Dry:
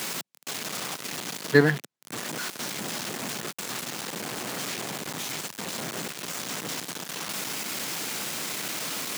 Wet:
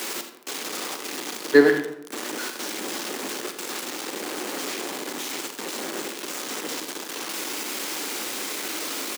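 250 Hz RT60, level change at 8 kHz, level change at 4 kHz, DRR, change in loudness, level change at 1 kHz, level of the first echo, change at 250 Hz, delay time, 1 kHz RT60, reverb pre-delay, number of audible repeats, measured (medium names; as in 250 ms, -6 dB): 0.95 s, +1.0 dB, +1.5 dB, 6.5 dB, +2.5 dB, +2.0 dB, -13.5 dB, +4.0 dB, 85 ms, 0.75 s, 39 ms, 1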